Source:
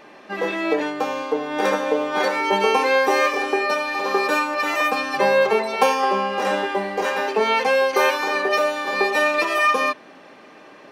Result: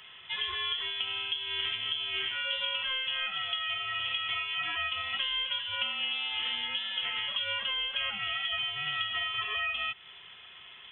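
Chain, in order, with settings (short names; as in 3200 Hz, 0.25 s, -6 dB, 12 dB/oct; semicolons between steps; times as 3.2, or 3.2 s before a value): compressor, threshold -25 dBFS, peak gain reduction 12.5 dB; inverted band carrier 3700 Hz; gain -5 dB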